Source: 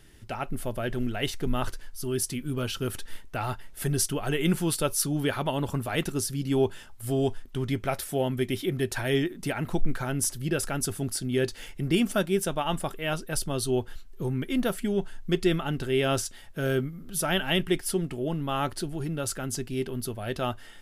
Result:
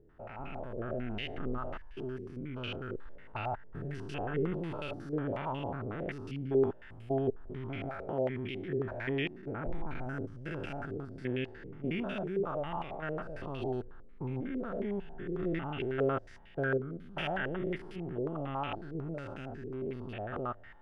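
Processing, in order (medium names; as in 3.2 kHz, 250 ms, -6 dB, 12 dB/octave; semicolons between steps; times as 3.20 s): spectrogram pixelated in time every 200 ms; step-sequenced low-pass 11 Hz 460–2600 Hz; trim -7 dB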